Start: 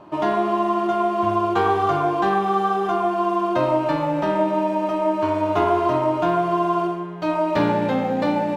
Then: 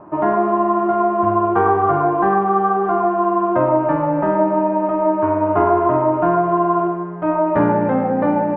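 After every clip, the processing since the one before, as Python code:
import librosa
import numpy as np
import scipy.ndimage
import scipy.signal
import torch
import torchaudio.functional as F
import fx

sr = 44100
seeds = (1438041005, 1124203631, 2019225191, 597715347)

y = scipy.signal.sosfilt(scipy.signal.butter(4, 1700.0, 'lowpass', fs=sr, output='sos'), x)
y = y * 10.0 ** (4.0 / 20.0)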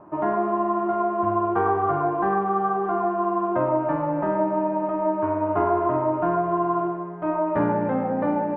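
y = x + 10.0 ** (-20.5 / 20.0) * np.pad(x, (int(725 * sr / 1000.0), 0))[:len(x)]
y = y * 10.0 ** (-6.5 / 20.0)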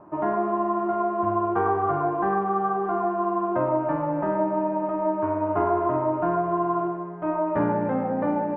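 y = fx.air_absorb(x, sr, metres=90.0)
y = y * 10.0 ** (-1.0 / 20.0)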